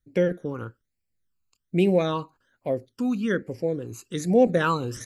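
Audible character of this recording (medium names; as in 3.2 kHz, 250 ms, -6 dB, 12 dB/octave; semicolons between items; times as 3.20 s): phasing stages 12, 1.2 Hz, lowest notch 580–1200 Hz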